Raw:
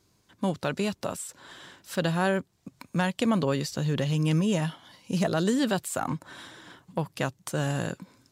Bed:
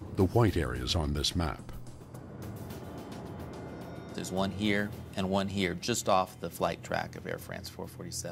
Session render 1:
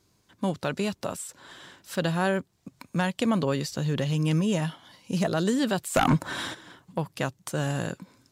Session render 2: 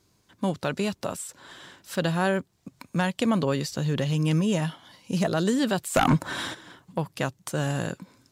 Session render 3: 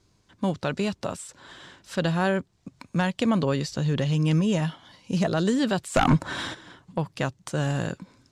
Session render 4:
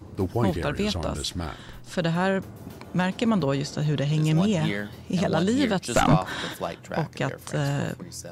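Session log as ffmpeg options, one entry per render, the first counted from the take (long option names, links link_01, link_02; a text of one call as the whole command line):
ffmpeg -i in.wav -filter_complex "[0:a]asplit=3[link_01][link_02][link_03];[link_01]afade=type=out:start_time=5.94:duration=0.02[link_04];[link_02]aeval=exprs='0.188*sin(PI/2*2.51*val(0)/0.188)':channel_layout=same,afade=type=in:start_time=5.94:duration=0.02,afade=type=out:start_time=6.53:duration=0.02[link_05];[link_03]afade=type=in:start_time=6.53:duration=0.02[link_06];[link_04][link_05][link_06]amix=inputs=3:normalize=0" out.wav
ffmpeg -i in.wav -af "volume=1dB" out.wav
ffmpeg -i in.wav -af "lowpass=7700,lowshelf=frequency=68:gain=10" out.wav
ffmpeg -i in.wav -i bed.wav -filter_complex "[1:a]volume=-0.5dB[link_01];[0:a][link_01]amix=inputs=2:normalize=0" out.wav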